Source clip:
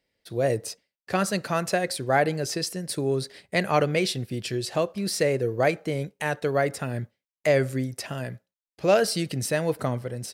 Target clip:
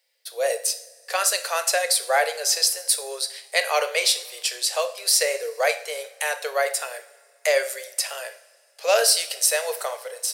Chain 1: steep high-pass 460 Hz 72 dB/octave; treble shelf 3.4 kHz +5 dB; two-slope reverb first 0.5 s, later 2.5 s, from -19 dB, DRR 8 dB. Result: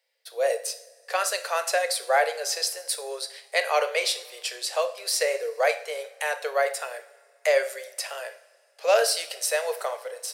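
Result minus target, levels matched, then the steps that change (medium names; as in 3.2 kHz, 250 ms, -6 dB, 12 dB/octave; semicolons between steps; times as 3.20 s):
8 kHz band -4.5 dB
change: treble shelf 3.4 kHz +14.5 dB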